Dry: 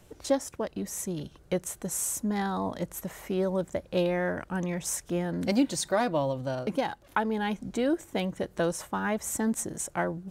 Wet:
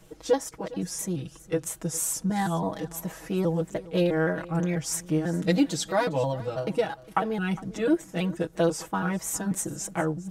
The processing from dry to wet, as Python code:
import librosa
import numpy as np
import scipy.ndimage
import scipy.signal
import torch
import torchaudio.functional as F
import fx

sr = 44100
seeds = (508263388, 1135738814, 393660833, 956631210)

p1 = fx.pitch_trill(x, sr, semitones=-2.0, every_ms=164)
p2 = p1 + 0.87 * np.pad(p1, (int(6.2 * sr / 1000.0), 0))[:len(p1)]
y = p2 + fx.echo_single(p2, sr, ms=407, db=-19.0, dry=0)